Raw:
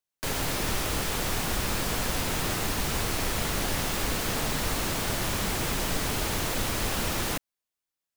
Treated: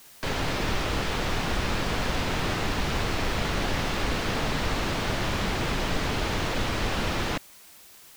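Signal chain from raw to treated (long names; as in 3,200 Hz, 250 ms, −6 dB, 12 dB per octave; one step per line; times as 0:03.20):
low-pass filter 4,300 Hz 12 dB per octave
background noise white −53 dBFS
level +2.5 dB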